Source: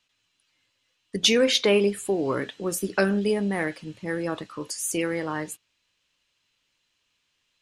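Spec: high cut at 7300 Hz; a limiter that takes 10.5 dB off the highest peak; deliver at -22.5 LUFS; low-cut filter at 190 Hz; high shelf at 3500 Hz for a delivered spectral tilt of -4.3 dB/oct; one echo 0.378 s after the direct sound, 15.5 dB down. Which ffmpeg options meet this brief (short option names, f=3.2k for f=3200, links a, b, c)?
-af "highpass=190,lowpass=7.3k,highshelf=f=3.5k:g=-4.5,alimiter=limit=-19dB:level=0:latency=1,aecho=1:1:378:0.168,volume=7.5dB"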